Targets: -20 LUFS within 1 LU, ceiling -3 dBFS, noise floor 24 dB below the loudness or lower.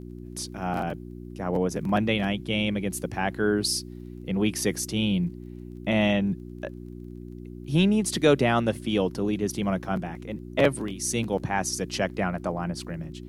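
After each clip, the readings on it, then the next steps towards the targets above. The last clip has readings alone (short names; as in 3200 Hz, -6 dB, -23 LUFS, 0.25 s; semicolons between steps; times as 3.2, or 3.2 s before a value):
ticks 25/s; hum 60 Hz; harmonics up to 360 Hz; hum level -37 dBFS; loudness -26.5 LUFS; peak -8.0 dBFS; loudness target -20.0 LUFS
-> de-click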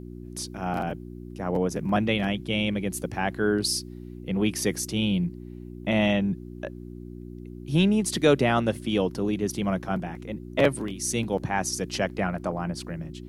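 ticks 0.075/s; hum 60 Hz; harmonics up to 360 Hz; hum level -37 dBFS
-> de-hum 60 Hz, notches 6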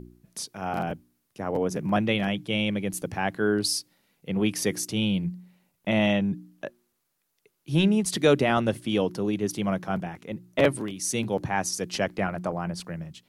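hum none; loudness -27.0 LUFS; peak -8.0 dBFS; loudness target -20.0 LUFS
-> gain +7 dB; limiter -3 dBFS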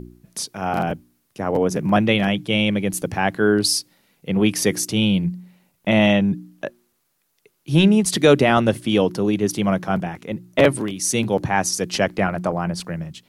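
loudness -20.0 LUFS; peak -3.0 dBFS; noise floor -69 dBFS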